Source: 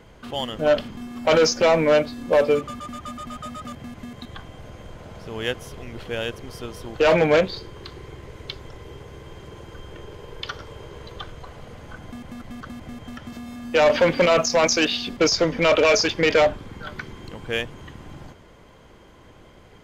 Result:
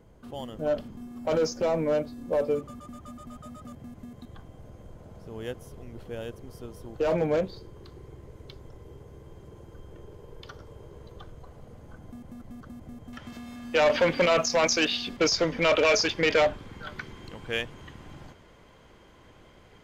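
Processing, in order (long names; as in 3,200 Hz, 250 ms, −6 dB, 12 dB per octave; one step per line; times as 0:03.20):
parametric band 2,700 Hz −12 dB 2.8 octaves, from 0:13.13 +2 dB
level −5.5 dB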